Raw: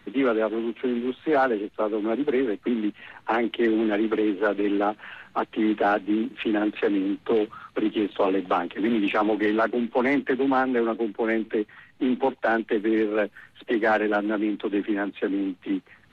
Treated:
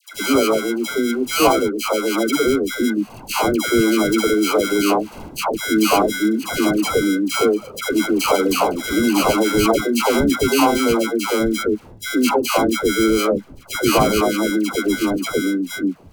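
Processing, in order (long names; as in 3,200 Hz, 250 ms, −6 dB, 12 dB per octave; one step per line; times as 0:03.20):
gate on every frequency bin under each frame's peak −30 dB strong
sample-rate reduction 1,800 Hz, jitter 0%
all-pass dispersion lows, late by 147 ms, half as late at 920 Hz
level +6.5 dB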